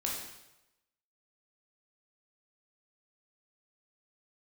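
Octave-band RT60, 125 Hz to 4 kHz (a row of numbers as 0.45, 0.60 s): 0.95, 0.80, 0.95, 0.95, 0.90, 0.85 s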